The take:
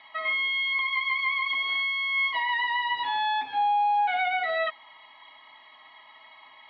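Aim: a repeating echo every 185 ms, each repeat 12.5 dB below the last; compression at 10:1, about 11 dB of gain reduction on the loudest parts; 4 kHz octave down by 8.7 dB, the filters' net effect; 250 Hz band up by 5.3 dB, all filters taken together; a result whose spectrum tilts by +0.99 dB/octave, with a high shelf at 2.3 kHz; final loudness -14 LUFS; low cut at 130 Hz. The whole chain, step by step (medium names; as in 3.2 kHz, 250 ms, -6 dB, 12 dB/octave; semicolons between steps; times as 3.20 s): high-pass 130 Hz; peaking EQ 250 Hz +6.5 dB; treble shelf 2.3 kHz -5 dB; peaking EQ 4 kHz -7.5 dB; compression 10:1, threshold -33 dBFS; feedback delay 185 ms, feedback 24%, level -12.5 dB; trim +21 dB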